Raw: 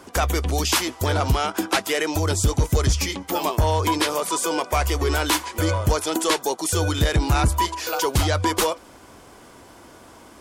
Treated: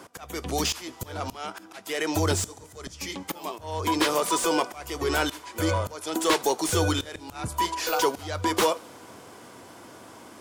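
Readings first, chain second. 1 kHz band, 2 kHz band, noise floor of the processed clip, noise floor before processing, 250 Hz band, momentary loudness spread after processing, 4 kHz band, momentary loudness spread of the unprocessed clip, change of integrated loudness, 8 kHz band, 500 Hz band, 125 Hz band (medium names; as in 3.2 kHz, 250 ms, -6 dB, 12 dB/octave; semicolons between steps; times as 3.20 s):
-4.0 dB, -5.0 dB, -48 dBFS, -47 dBFS, -3.5 dB, 22 LU, -4.5 dB, 3 LU, -5.0 dB, -5.0 dB, -3.5 dB, -11.0 dB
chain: high-pass 95 Hz 24 dB/octave; slow attack 485 ms; two-slope reverb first 0.44 s, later 3.3 s, from -17 dB, DRR 18 dB; slew-rate limiter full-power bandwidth 340 Hz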